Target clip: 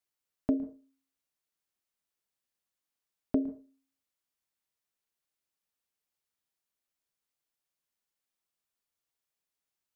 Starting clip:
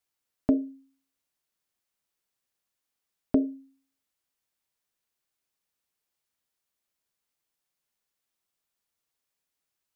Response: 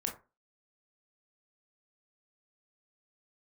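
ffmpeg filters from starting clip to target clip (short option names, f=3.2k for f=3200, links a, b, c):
-filter_complex "[0:a]asplit=2[a][b];[1:a]atrim=start_sample=2205,adelay=111[c];[b][c]afir=irnorm=-1:irlink=0,volume=-18.5dB[d];[a][d]amix=inputs=2:normalize=0,volume=-5dB"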